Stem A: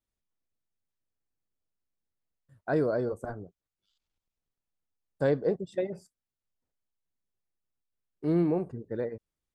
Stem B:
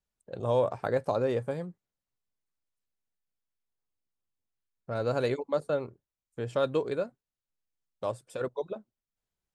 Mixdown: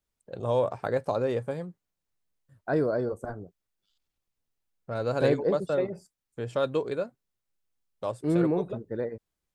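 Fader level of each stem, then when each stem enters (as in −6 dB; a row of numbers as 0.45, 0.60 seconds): +1.0, +0.5 decibels; 0.00, 0.00 seconds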